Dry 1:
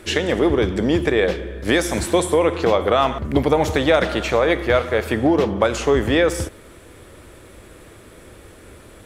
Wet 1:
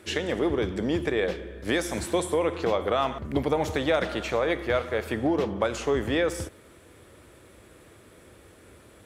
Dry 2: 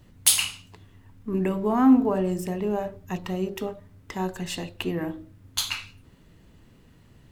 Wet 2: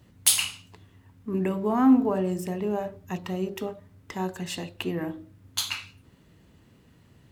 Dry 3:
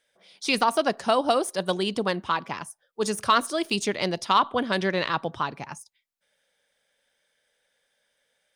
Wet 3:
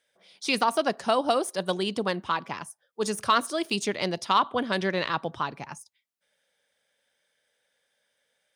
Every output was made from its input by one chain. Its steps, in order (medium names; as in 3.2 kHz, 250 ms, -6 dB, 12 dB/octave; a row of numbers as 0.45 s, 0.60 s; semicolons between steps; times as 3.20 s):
high-pass 62 Hz; normalise loudness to -27 LUFS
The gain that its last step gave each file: -8.0 dB, -1.5 dB, -2.0 dB